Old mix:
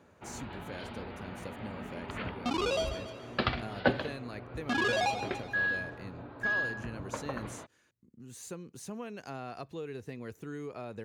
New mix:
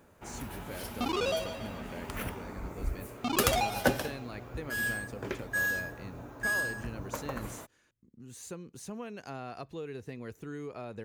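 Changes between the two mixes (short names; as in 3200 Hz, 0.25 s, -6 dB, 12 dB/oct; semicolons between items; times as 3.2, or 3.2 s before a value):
first sound: remove steep low-pass 4500 Hz 72 dB/oct; second sound: entry -1.45 s; master: remove HPF 69 Hz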